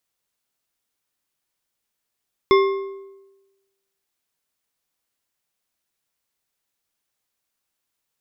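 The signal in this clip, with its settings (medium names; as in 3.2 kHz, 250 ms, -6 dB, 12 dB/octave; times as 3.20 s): metal hit bar, lowest mode 391 Hz, decay 1.12 s, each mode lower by 5.5 dB, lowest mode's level -10 dB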